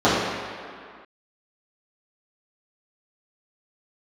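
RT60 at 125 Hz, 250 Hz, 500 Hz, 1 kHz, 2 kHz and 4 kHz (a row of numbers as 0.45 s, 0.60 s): 1.5 s, 2.0 s, 2.0 s, 2.3 s, no reading, 1.6 s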